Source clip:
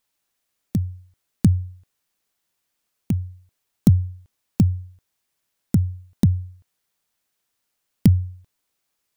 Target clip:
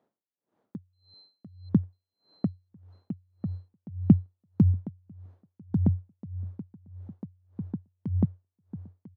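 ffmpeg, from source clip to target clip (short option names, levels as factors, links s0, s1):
-filter_complex "[0:a]acrossover=split=5300[s0][s1];[s1]acrusher=samples=17:mix=1:aa=0.000001[s2];[s0][s2]amix=inputs=2:normalize=0,highpass=190,tiltshelf=f=1200:g=9,alimiter=limit=0.473:level=0:latency=1:release=102,dynaudnorm=f=410:g=7:m=3.76,asettb=1/sr,asplit=3[s3][s4][s5];[s3]atrim=end=0.934[s6];[s4]atrim=start=0.93:end=1.69,asetpts=PTS-STARTPTS,afade=t=in:d=0.004:c=qsin,afade=t=out:st=0.756:d=0.004:c=qsin,aeval=exprs='val(0)+0.00501*sin(2*PI*4100*n/s)':c=same[s7];[s5]atrim=start=1.686[s8];[s6][s7]acrossfade=d=0.004:c1=hsin:c2=qsin[s9];[s9][s8]acrossfade=d=0.004:c1=qsin:c2=hsin,highshelf=f=2400:g=-6.5,asplit=2[s10][s11];[s11]adelay=997,lowpass=f=3200:p=1,volume=0.631,asplit=2[s12][s13];[s13]adelay=997,lowpass=f=3200:p=1,volume=0.37,asplit=2[s14][s15];[s15]adelay=997,lowpass=f=3200:p=1,volume=0.37,asplit=2[s16][s17];[s17]adelay=997,lowpass=f=3200:p=1,volume=0.37,asplit=2[s18][s19];[s19]adelay=997,lowpass=f=3200:p=1,volume=0.37[s20];[s12][s14][s16][s18][s20]amix=inputs=5:normalize=0[s21];[s10][s21]amix=inputs=2:normalize=0,aeval=exprs='val(0)*pow(10,-35*(0.5-0.5*cos(2*PI*1.7*n/s))/20)':c=same"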